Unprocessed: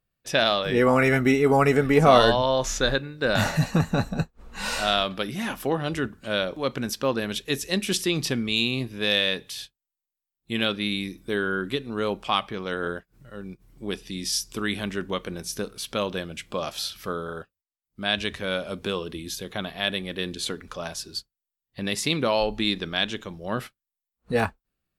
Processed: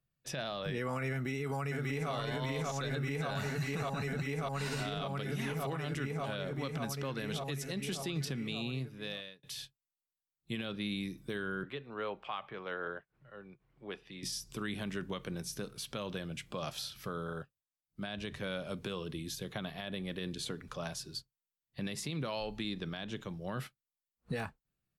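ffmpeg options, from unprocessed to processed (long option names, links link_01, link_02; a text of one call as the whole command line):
ffmpeg -i in.wav -filter_complex "[0:a]asplit=2[link_01][link_02];[link_02]afade=type=in:start_time=1.12:duration=0.01,afade=type=out:start_time=2.12:duration=0.01,aecho=0:1:590|1180|1770|2360|2950|3540|4130|4720|5310|5900|6490|7080:0.891251|0.713001|0.570401|0.45632|0.365056|0.292045|0.233636|0.186909|0.149527|0.119622|0.0956973|0.0765579[link_03];[link_01][link_03]amix=inputs=2:normalize=0,asettb=1/sr,asplit=3[link_04][link_05][link_06];[link_04]atrim=end=11.634[link_07];[link_05]atrim=start=11.63:end=14.23,asetpts=PTS-STARTPTS,afade=type=in:duration=0.004:curve=qsin,afade=type=out:start_time=2.596:duration=0.004:curve=qsin,acrossover=split=420 3200:gain=0.2 1 0.0794[link_08][link_09][link_10];[link_08][link_09][link_10]amix=inputs=3:normalize=0[link_11];[link_06]atrim=start=14.226[link_12];[link_07][link_11]acrossfade=duration=0.004:curve1=hsin:curve2=qsin[link_13];[link_13][link_12]acrossfade=duration=0.004:curve1=qsin:curve2=hsin,asplit=2[link_14][link_15];[link_14]atrim=end=9.43,asetpts=PTS-STARTPTS,afade=type=out:start_time=8.27:duration=1.16[link_16];[link_15]atrim=start=9.43,asetpts=PTS-STARTPTS,afade=type=in:duration=0.004:curve=hsin[link_17];[link_16][link_17]concat=n=2:v=0:a=1,equalizer=frequency=140:width_type=o:width=0.53:gain=11.5,acrossover=split=130|1200[link_18][link_19][link_20];[link_18]acompressor=threshold=-40dB:ratio=4[link_21];[link_19]acompressor=threshold=-28dB:ratio=4[link_22];[link_20]acompressor=threshold=-31dB:ratio=4[link_23];[link_21][link_22][link_23]amix=inputs=3:normalize=0,alimiter=limit=-20dB:level=0:latency=1:release=55,volume=-7dB" out.wav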